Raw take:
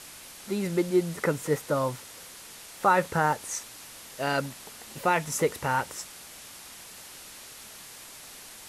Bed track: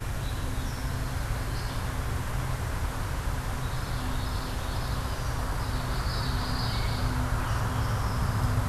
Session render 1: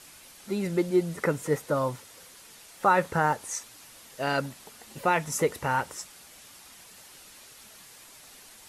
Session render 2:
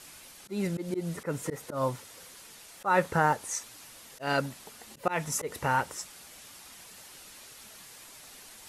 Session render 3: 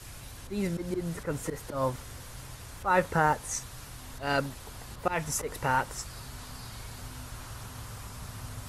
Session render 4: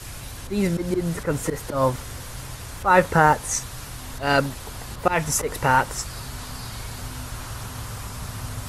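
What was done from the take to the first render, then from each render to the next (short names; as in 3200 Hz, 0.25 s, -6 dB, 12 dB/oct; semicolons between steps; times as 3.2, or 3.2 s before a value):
denoiser 6 dB, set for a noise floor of -46 dBFS
auto swell 0.13 s; reverse; upward compressor, threshold -46 dBFS; reverse
add bed track -15 dB
gain +8.5 dB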